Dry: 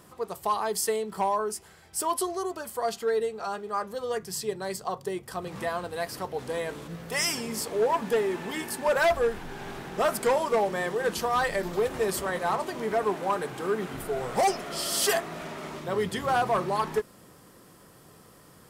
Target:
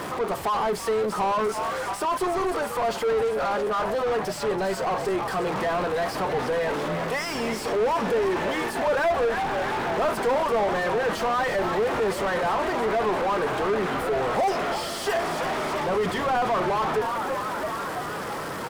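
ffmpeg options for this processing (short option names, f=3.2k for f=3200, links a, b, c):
-filter_complex "[0:a]aeval=exprs='val(0)+0.5*0.00891*sgn(val(0))':c=same,asplit=8[a][b][c][d][e][f][g][h];[b]adelay=333,afreqshift=98,volume=-14.5dB[i];[c]adelay=666,afreqshift=196,volume=-18.4dB[j];[d]adelay=999,afreqshift=294,volume=-22.3dB[k];[e]adelay=1332,afreqshift=392,volume=-26.1dB[l];[f]adelay=1665,afreqshift=490,volume=-30dB[m];[g]adelay=1998,afreqshift=588,volume=-33.9dB[n];[h]adelay=2331,afreqshift=686,volume=-37.8dB[o];[a][i][j][k][l][m][n][o]amix=inputs=8:normalize=0,asplit=2[p][q];[q]highpass=f=720:p=1,volume=28dB,asoftclip=type=tanh:threshold=-17dB[r];[p][r]amix=inputs=2:normalize=0,lowpass=f=1.2k:p=1,volume=-6dB"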